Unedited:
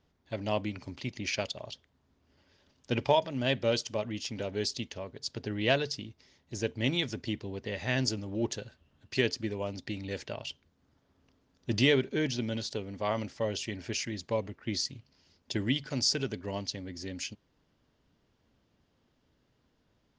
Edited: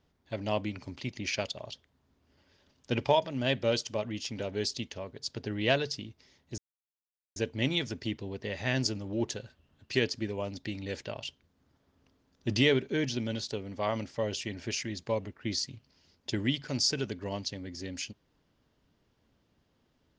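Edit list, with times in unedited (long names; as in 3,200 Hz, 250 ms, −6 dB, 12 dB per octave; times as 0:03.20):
0:06.58: splice in silence 0.78 s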